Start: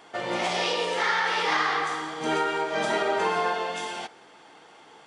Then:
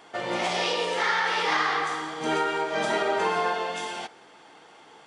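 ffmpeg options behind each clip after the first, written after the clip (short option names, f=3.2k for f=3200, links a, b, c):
-af anull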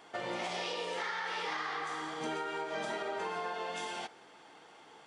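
-af "acompressor=threshold=-29dB:ratio=6,volume=-5dB"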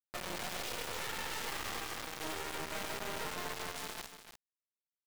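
-af "acrusher=bits=3:dc=4:mix=0:aa=0.000001,aecho=1:1:295:0.316,volume=-1.5dB"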